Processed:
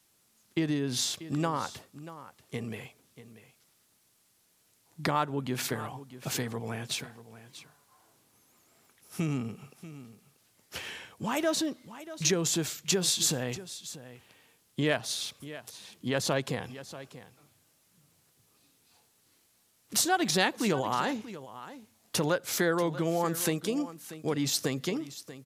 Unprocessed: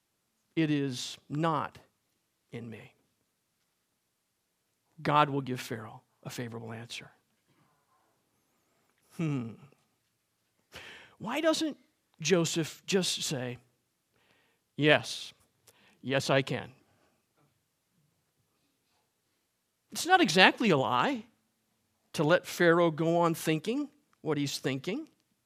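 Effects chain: dynamic bell 2.8 kHz, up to -7 dB, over -46 dBFS, Q 1.8; compression 2.5:1, threshold -34 dBFS, peak gain reduction 12 dB; treble shelf 4.2 kHz +8.5 dB; on a send: delay 637 ms -15 dB; on the sum: trim +5.5 dB

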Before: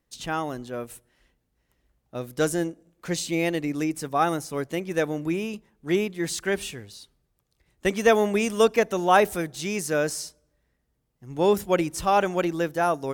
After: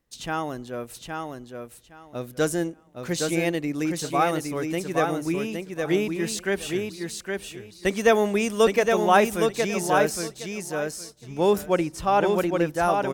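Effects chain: 11.66–12.68 s: treble shelf 4.5 kHz -8 dB; on a send: feedback delay 815 ms, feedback 18%, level -4.5 dB

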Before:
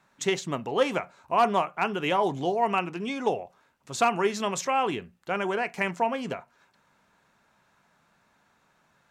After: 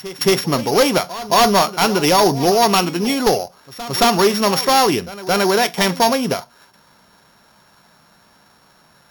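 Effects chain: sorted samples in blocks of 8 samples; sine folder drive 5 dB, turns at -12.5 dBFS; pre-echo 222 ms -16 dB; trim +4.5 dB

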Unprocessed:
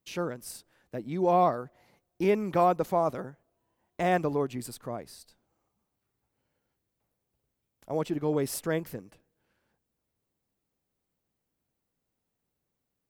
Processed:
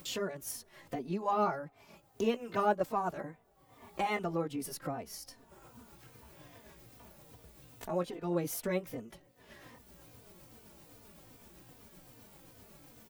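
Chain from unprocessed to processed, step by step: rotating-head pitch shifter +2.5 st; upward compressor, threshold -27 dBFS; endless flanger 3.2 ms -2.5 Hz; trim -1 dB

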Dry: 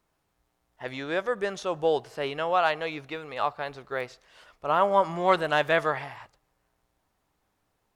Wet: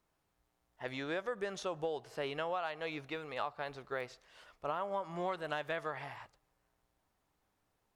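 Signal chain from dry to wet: compression 12:1, threshold -28 dBFS, peak gain reduction 13.5 dB; trim -5 dB

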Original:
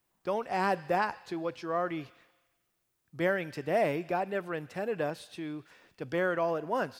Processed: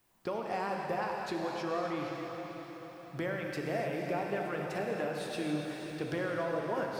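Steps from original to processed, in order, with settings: compression, threshold -39 dBFS, peak gain reduction 15 dB; on a send: echo that smears into a reverb 503 ms, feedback 50%, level -7 dB; on the sum: gated-style reverb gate 320 ms flat, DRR 1.5 dB; trim +5 dB

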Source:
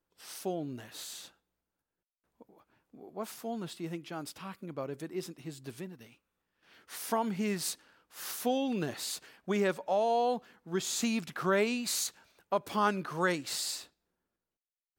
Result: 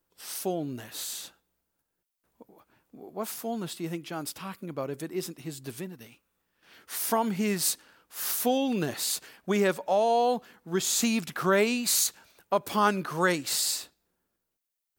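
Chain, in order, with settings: treble shelf 8.6 kHz +9 dB; trim +4.5 dB

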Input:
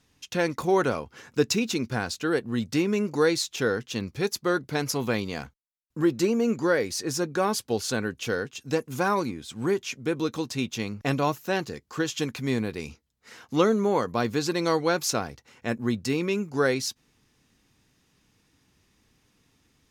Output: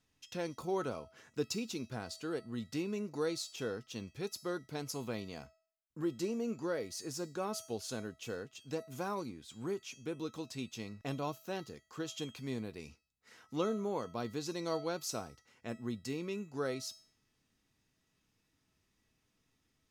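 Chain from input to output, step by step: dynamic bell 1.8 kHz, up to -7 dB, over -44 dBFS, Q 1.6; feedback comb 650 Hz, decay 0.48 s, mix 80%; trim +1 dB

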